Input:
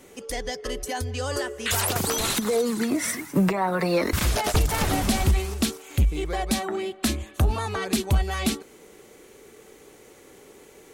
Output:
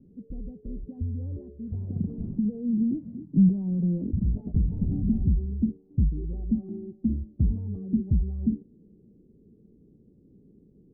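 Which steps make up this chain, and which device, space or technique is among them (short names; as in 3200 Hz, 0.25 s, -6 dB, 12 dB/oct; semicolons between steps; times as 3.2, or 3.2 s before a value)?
overdriven synthesiser ladder filter (soft clip -18.5 dBFS, distortion -15 dB; ladder low-pass 240 Hz, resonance 45%); gain +9 dB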